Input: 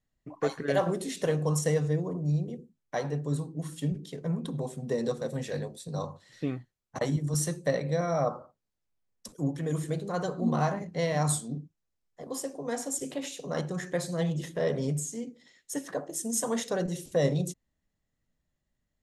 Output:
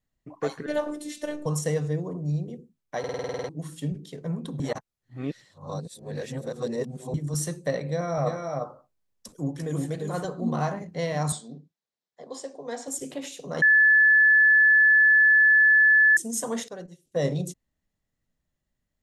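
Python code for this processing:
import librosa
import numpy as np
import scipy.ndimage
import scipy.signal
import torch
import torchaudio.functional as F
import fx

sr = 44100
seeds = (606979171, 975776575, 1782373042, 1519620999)

y = fx.robotise(x, sr, hz=298.0, at=(0.66, 1.46))
y = fx.echo_multitap(y, sr, ms=(345, 360), db=(-4.0, -11.0), at=(7.83, 10.25))
y = fx.cabinet(y, sr, low_hz=240.0, low_slope=12, high_hz=7300.0, hz=(310.0, 1300.0, 2600.0, 3900.0, 6200.0), db=(-7, -4, -4, 4, -4), at=(11.32, 12.88))
y = fx.upward_expand(y, sr, threshold_db=-38.0, expansion=2.5, at=(16.68, 17.19))
y = fx.edit(y, sr, fx.stutter_over(start_s=2.99, slice_s=0.05, count=10),
    fx.reverse_span(start_s=4.6, length_s=2.54),
    fx.bleep(start_s=13.62, length_s=2.55, hz=1730.0, db=-14.0), tone=tone)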